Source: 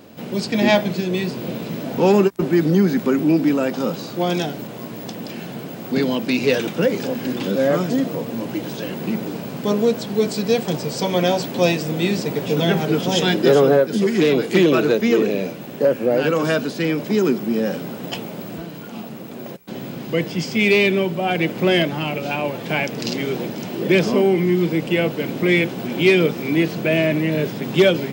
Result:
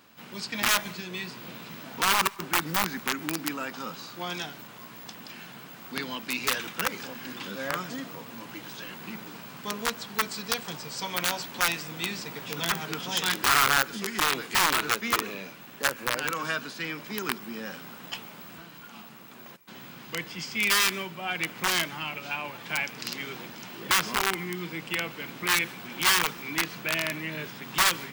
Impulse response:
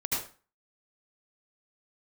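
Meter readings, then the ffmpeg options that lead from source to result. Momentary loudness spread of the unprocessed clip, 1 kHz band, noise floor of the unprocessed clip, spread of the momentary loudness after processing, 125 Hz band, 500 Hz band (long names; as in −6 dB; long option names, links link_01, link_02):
14 LU, −2.0 dB, −33 dBFS, 19 LU, −17.5 dB, −20.5 dB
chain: -filter_complex "[0:a]aeval=exprs='(mod(2.82*val(0)+1,2)-1)/2.82':channel_layout=same,lowshelf=frequency=790:width_type=q:width=1.5:gain=-10.5,asplit=2[link_01][link_02];[1:a]atrim=start_sample=2205,adelay=51[link_03];[link_02][link_03]afir=irnorm=-1:irlink=0,volume=-29.5dB[link_04];[link_01][link_04]amix=inputs=2:normalize=0,volume=-6.5dB"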